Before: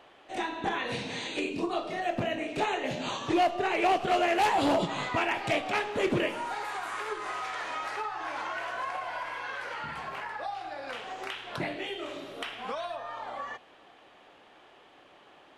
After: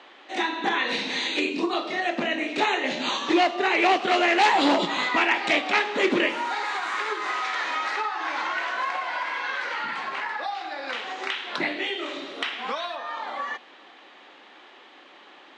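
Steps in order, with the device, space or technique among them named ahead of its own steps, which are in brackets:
high-pass filter 170 Hz
television speaker (loudspeaker in its box 210–7,100 Hz, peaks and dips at 450 Hz −4 dB, 660 Hz −6 dB, 2,000 Hz +4 dB, 3,900 Hz +5 dB)
level +7 dB

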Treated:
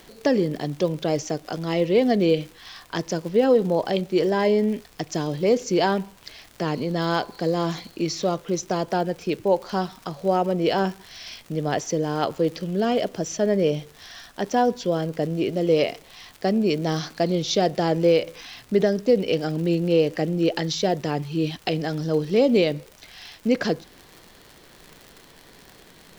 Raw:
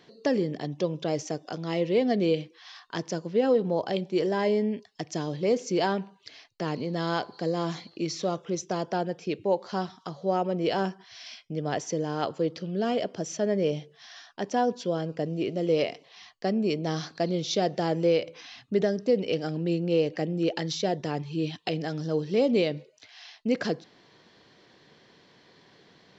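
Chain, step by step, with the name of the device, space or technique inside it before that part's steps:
vinyl LP (surface crackle 110 per second −38 dBFS; pink noise bed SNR 31 dB)
level +5 dB

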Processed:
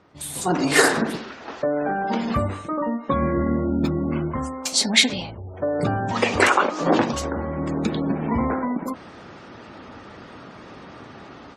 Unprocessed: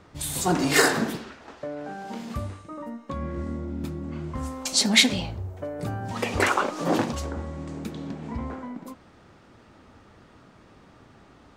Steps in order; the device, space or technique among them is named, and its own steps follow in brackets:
noise-suppressed video call (high-pass filter 180 Hz 6 dB per octave; gate on every frequency bin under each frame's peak −30 dB strong; automatic gain control gain up to 14 dB; level −1 dB; Opus 32 kbit/s 48,000 Hz)

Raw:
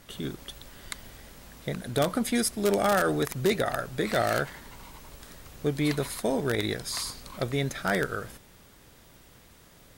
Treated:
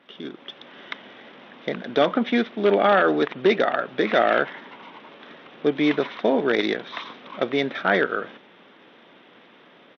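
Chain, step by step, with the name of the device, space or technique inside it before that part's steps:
Bluetooth headset (high-pass filter 220 Hz 24 dB per octave; automatic gain control gain up to 7.5 dB; downsampling to 8,000 Hz; SBC 64 kbit/s 32,000 Hz)

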